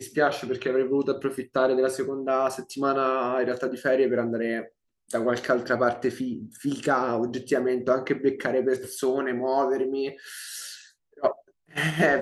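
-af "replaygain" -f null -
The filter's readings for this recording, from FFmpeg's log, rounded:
track_gain = +6.1 dB
track_peak = 0.259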